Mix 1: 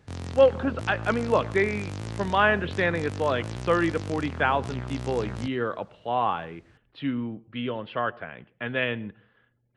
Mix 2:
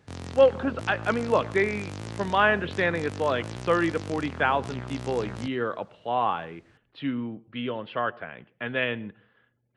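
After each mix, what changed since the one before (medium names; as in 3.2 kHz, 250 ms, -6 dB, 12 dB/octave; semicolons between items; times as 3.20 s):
master: add bass shelf 72 Hz -10.5 dB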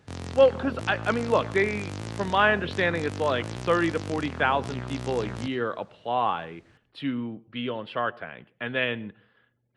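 speech: remove low-pass 3.5 kHz 12 dB/octave; background: send +10.5 dB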